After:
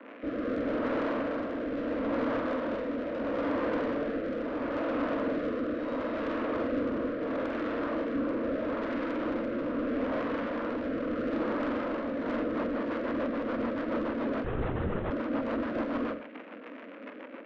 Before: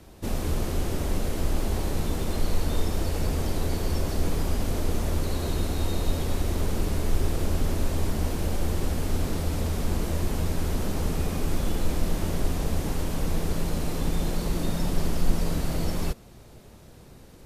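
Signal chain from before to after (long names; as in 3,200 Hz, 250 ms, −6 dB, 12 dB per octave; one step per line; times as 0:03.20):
in parallel at +0.5 dB: brickwall limiter −17.5 dBFS, peak gain reduction 9.5 dB
on the sum: phaser with its sweep stopped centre 490 Hz, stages 8
surface crackle 200 per second −28 dBFS
single-sideband voice off tune +61 Hz 190–2,500 Hz
soft clipping −32 dBFS, distortion −10 dB
on a send: flutter between parallel walls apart 7.9 metres, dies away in 0.38 s
on the sum: rotating-speaker cabinet horn 0.75 Hz, later 7 Hz, at 0:11.96
0:14.44–0:15.11: linear-prediction vocoder at 8 kHz whisper
level +5.5 dB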